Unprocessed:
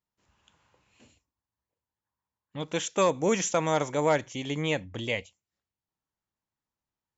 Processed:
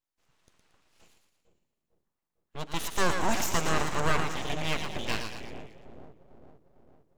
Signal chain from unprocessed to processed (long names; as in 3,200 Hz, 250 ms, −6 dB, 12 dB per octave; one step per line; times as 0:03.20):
echo with a time of its own for lows and highs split 380 Hz, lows 452 ms, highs 114 ms, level −5.5 dB
full-wave rectification